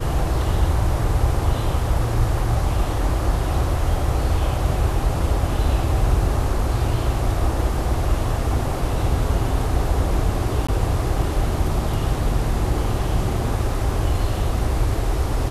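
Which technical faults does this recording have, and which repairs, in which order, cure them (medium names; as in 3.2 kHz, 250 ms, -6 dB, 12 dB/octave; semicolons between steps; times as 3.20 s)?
10.67–10.69 s: dropout 15 ms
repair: interpolate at 10.67 s, 15 ms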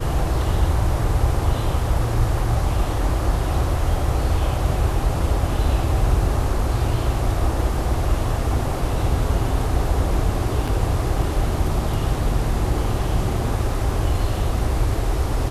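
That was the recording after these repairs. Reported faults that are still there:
nothing left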